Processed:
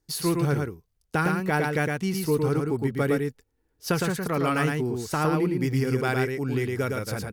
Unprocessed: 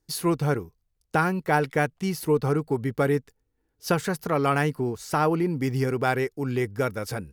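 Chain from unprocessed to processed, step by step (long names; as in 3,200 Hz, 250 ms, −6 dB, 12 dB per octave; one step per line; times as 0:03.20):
dynamic equaliser 760 Hz, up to −6 dB, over −35 dBFS, Q 0.98
on a send: single-tap delay 111 ms −3.5 dB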